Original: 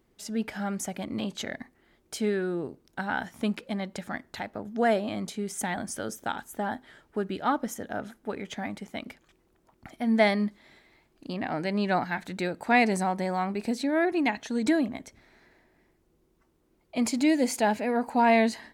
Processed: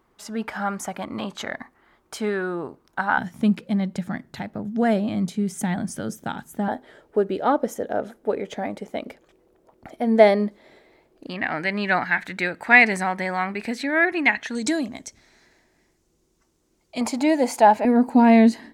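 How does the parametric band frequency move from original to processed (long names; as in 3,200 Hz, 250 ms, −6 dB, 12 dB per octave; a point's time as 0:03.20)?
parametric band +13.5 dB 1.3 octaves
1,100 Hz
from 0:03.18 160 Hz
from 0:06.68 500 Hz
from 0:11.27 1,900 Hz
from 0:14.55 6,500 Hz
from 0:17.01 840 Hz
from 0:17.85 270 Hz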